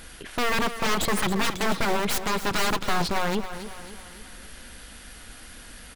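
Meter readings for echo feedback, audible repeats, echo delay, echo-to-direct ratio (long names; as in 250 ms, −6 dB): 48%, 4, 275 ms, −10.5 dB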